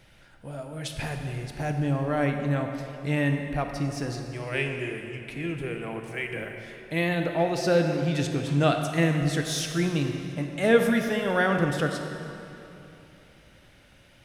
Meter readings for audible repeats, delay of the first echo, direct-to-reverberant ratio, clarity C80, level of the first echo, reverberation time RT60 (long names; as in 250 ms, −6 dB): no echo audible, no echo audible, 4.0 dB, 6.0 dB, no echo audible, 2.9 s